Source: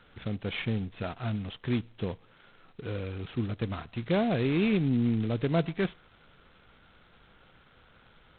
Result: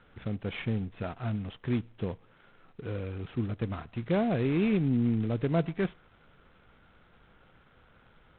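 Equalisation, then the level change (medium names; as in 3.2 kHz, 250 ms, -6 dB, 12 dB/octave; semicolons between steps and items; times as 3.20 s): distance through air 290 m; 0.0 dB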